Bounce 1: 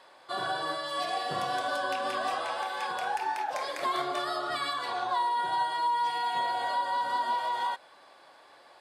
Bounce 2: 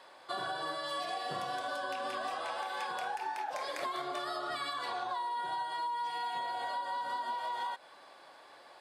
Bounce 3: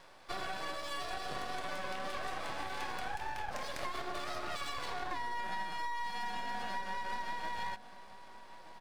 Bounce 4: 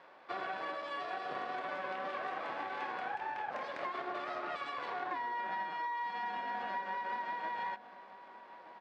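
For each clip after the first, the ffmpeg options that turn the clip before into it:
-af "highpass=88,acompressor=threshold=-34dB:ratio=6"
-filter_complex "[0:a]aeval=exprs='max(val(0),0)':c=same,asplit=2[a][b];[b]adelay=1224,volume=-14dB,highshelf=f=4k:g=-27.6[c];[a][c]amix=inputs=2:normalize=0,volume=1.5dB"
-af "highpass=270,lowpass=2.2k,volume=2dB"

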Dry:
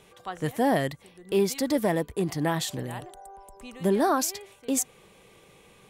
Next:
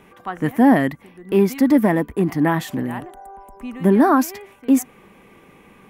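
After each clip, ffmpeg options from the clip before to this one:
-af "equalizer=f=125:t=o:w=1:g=-4,equalizer=f=250:t=o:w=1:g=10,equalizer=f=500:t=o:w=1:g=-5,equalizer=f=1k:t=o:w=1:g=3,equalizer=f=2k:t=o:w=1:g=4,equalizer=f=4k:t=o:w=1:g=-10,equalizer=f=8k:t=o:w=1:g=-10,volume=6dB"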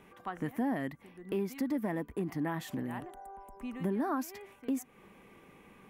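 -af "acompressor=threshold=-26dB:ratio=2.5,volume=-8.5dB"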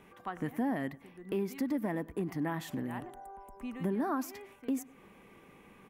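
-filter_complex "[0:a]asplit=2[a][b];[b]adelay=99,lowpass=f=2.2k:p=1,volume=-20.5dB,asplit=2[c][d];[d]adelay=99,lowpass=f=2.2k:p=1,volume=0.36,asplit=2[e][f];[f]adelay=99,lowpass=f=2.2k:p=1,volume=0.36[g];[a][c][e][g]amix=inputs=4:normalize=0"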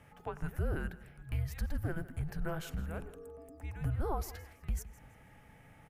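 -af "afreqshift=-320,aecho=1:1:163|326|489:0.126|0.0378|0.0113,volume=-1dB"

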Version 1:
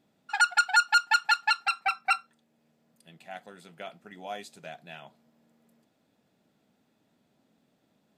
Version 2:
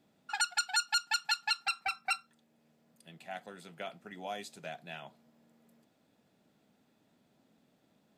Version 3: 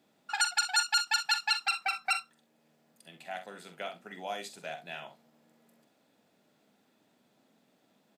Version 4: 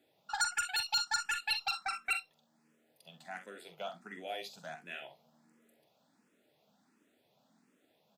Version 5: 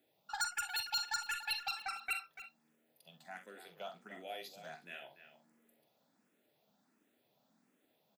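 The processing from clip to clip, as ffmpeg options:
-filter_complex "[0:a]acrossover=split=300|3000[a][b][c];[b]acompressor=threshold=-36dB:ratio=4[d];[a][d][c]amix=inputs=3:normalize=0"
-filter_complex "[0:a]highpass=f=290:p=1,asplit=2[a][b];[b]aecho=0:1:45|65:0.335|0.211[c];[a][c]amix=inputs=2:normalize=0,volume=3dB"
-filter_complex "[0:a]asoftclip=type=tanh:threshold=-21dB,asplit=2[a][b];[b]afreqshift=1.4[c];[a][c]amix=inputs=2:normalize=1"
-filter_complex "[0:a]asplit=2[a][b];[b]adelay=290,highpass=300,lowpass=3.4k,asoftclip=type=hard:threshold=-30dB,volume=-11dB[c];[a][c]amix=inputs=2:normalize=0,aexciter=amount=2:drive=6.3:freq=11k,volume=-4.5dB"

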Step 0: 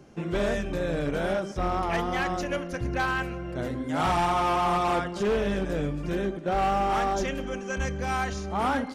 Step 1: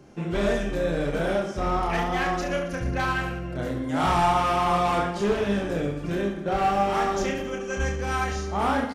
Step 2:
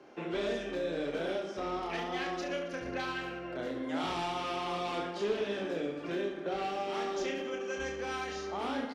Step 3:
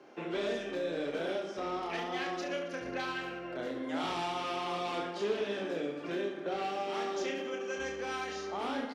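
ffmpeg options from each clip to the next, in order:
-af "aecho=1:1:30|69|119.7|185.6|271.3:0.631|0.398|0.251|0.158|0.1"
-filter_complex "[0:a]bandreject=f=50:t=h:w=6,bandreject=f=100:t=h:w=6,bandreject=f=150:t=h:w=6,bandreject=f=200:t=h:w=6,acrossover=split=380|3000[a][b][c];[b]acompressor=threshold=-39dB:ratio=5[d];[a][d][c]amix=inputs=3:normalize=0,acrossover=split=290 4800:gain=0.0708 1 0.126[e][f][g];[e][f][g]amix=inputs=3:normalize=0"
-af "highpass=f=140:p=1"

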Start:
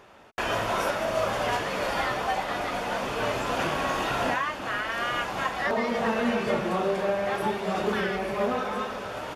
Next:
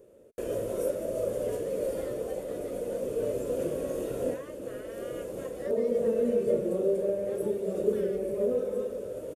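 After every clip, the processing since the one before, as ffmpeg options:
-af "firequalizer=gain_entry='entry(200,0);entry(510,12);entry(770,-19);entry(5000,-13);entry(8500,5)':delay=0.05:min_phase=1,volume=-5.5dB"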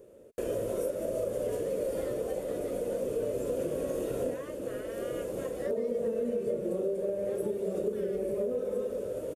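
-af "acompressor=threshold=-30dB:ratio=6,volume=2dB"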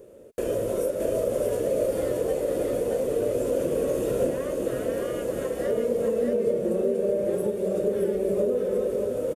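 -af "aecho=1:1:621:0.631,volume=5.5dB"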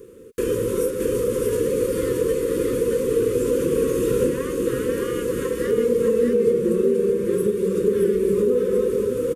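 -af "asuperstop=centerf=710:order=12:qfactor=1.5,volume=6.5dB"

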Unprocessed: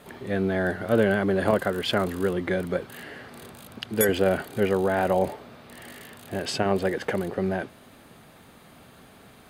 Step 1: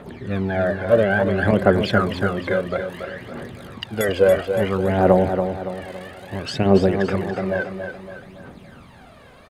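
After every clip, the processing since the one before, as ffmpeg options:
-af "aemphasis=mode=reproduction:type=50fm,aphaser=in_gain=1:out_gain=1:delay=2:decay=0.69:speed=0.59:type=triangular,aecho=1:1:282|564|846|1128|1410:0.422|0.19|0.0854|0.0384|0.0173,volume=2dB"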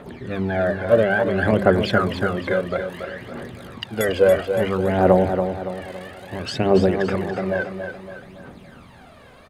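-af "bandreject=f=50:t=h:w=6,bandreject=f=100:t=h:w=6,bandreject=f=150:t=h:w=6,bandreject=f=200:t=h:w=6"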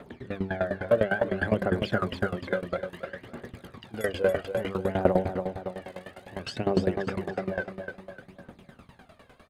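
-af "aeval=exprs='val(0)*pow(10,-18*if(lt(mod(9.9*n/s,1),2*abs(9.9)/1000),1-mod(9.9*n/s,1)/(2*abs(9.9)/1000),(mod(9.9*n/s,1)-2*abs(9.9)/1000)/(1-2*abs(9.9)/1000))/20)':c=same,volume=-2dB"

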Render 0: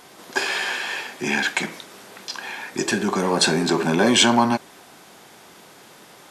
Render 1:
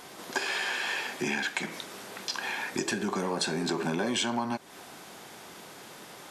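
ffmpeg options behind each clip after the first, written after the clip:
-af "acompressor=threshold=-28dB:ratio=5"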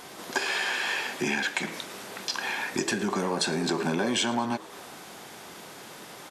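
-filter_complex "[0:a]asplit=7[a][b][c][d][e][f][g];[b]adelay=111,afreqshift=82,volume=-20dB[h];[c]adelay=222,afreqshift=164,volume=-23.9dB[i];[d]adelay=333,afreqshift=246,volume=-27.8dB[j];[e]adelay=444,afreqshift=328,volume=-31.6dB[k];[f]adelay=555,afreqshift=410,volume=-35.5dB[l];[g]adelay=666,afreqshift=492,volume=-39.4dB[m];[a][h][i][j][k][l][m]amix=inputs=7:normalize=0,volume=2.5dB"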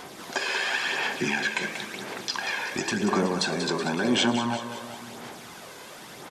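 -filter_complex "[0:a]aecho=1:1:187|374|561|748|935|1122|1309:0.355|0.199|0.111|0.0623|0.0349|0.0195|0.0109,acrossover=split=8100[a][b];[b]acompressor=threshold=-53dB:ratio=4:attack=1:release=60[c];[a][c]amix=inputs=2:normalize=0,aphaser=in_gain=1:out_gain=1:delay=2:decay=0.4:speed=0.95:type=sinusoidal"

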